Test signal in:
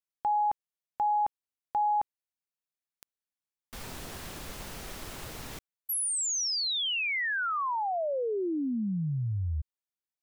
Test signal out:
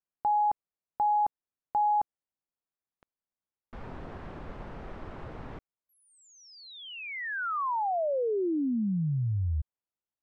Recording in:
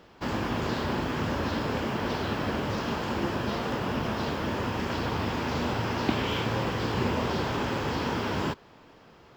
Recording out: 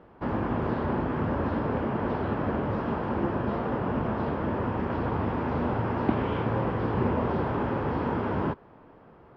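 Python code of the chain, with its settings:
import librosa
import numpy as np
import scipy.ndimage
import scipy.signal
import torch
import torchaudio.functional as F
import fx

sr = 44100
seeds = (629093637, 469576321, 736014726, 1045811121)

y = scipy.signal.sosfilt(scipy.signal.butter(2, 1300.0, 'lowpass', fs=sr, output='sos'), x)
y = y * 10.0 ** (2.0 / 20.0)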